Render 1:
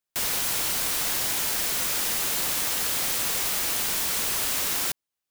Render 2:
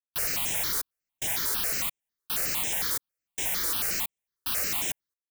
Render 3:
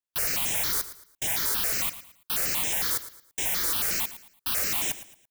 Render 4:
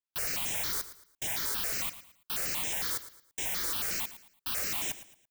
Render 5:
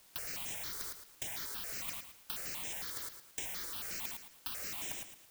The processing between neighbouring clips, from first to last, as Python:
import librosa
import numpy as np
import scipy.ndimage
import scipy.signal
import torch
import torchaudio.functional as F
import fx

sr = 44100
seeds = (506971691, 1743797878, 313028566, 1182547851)

y1 = fx.step_gate(x, sr, bpm=111, pattern='.xxxxx...xxxxx..', floor_db=-60.0, edge_ms=4.5)
y1 = fx.phaser_held(y1, sr, hz=11.0, low_hz=730.0, high_hz=4500.0)
y2 = fx.echo_feedback(y1, sr, ms=112, feedback_pct=33, wet_db=-14.5)
y2 = y2 * librosa.db_to_amplitude(1.5)
y3 = fx.peak_eq(y2, sr, hz=12000.0, db=-6.5, octaves=0.34)
y3 = y3 * librosa.db_to_amplitude(-5.0)
y4 = fx.over_compress(y3, sr, threshold_db=-37.0, ratio=-0.5)
y4 = fx.quant_dither(y4, sr, seeds[0], bits=10, dither='triangular')
y4 = y4 * librosa.db_to_amplitude(-2.0)